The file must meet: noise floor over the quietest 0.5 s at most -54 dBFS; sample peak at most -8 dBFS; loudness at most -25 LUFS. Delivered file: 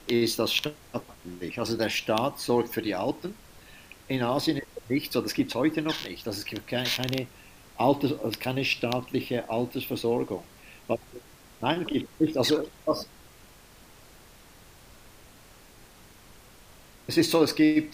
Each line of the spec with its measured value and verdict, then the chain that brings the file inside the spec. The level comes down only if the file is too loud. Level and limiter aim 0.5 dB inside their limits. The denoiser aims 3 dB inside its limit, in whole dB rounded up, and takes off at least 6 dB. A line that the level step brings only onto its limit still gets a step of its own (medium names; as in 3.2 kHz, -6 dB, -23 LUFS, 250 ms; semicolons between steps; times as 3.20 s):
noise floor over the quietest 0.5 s -53 dBFS: fail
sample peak -8.5 dBFS: pass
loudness -28.0 LUFS: pass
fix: noise reduction 6 dB, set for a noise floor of -53 dBFS